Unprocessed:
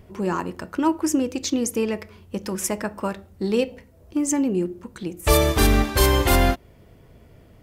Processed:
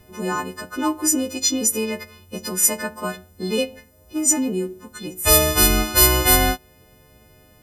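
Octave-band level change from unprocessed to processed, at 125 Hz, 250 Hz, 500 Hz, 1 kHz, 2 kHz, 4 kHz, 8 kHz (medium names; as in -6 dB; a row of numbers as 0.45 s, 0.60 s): -2.5 dB, -1.5 dB, -1.0 dB, +1.0 dB, +3.5 dB, +6.0 dB, +10.5 dB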